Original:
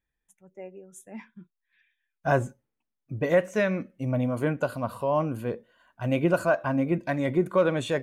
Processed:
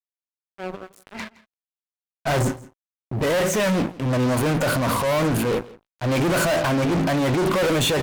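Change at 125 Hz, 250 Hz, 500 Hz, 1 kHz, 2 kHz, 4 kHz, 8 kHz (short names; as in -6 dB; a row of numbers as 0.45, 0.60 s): +6.5, +5.5, +3.5, +6.0, +6.0, +15.5, +18.0 dB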